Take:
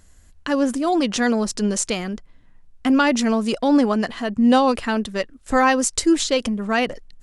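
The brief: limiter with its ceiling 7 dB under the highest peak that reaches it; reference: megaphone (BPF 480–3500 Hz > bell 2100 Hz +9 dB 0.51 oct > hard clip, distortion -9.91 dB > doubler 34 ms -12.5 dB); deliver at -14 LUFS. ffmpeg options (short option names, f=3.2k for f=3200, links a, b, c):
-filter_complex "[0:a]alimiter=limit=-12dB:level=0:latency=1,highpass=480,lowpass=3.5k,equalizer=f=2.1k:t=o:w=0.51:g=9,asoftclip=type=hard:threshold=-20dB,asplit=2[a][b];[b]adelay=34,volume=-12.5dB[c];[a][c]amix=inputs=2:normalize=0,volume=13dB"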